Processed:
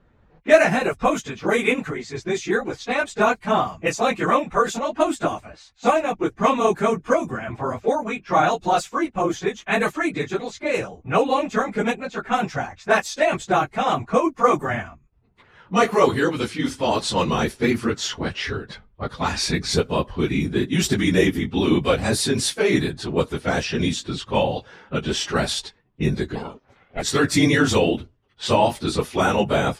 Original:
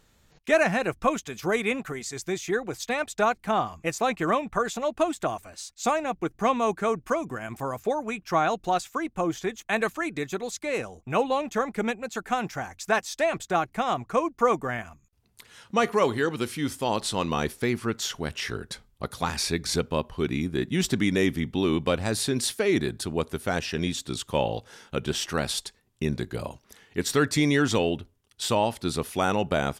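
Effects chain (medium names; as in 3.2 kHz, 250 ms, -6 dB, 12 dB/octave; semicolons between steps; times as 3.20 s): phase randomisation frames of 50 ms; level-controlled noise filter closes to 1.4 kHz, open at -22 dBFS; 26.35–27.02 s: ring modulator 330 Hz; trim +5.5 dB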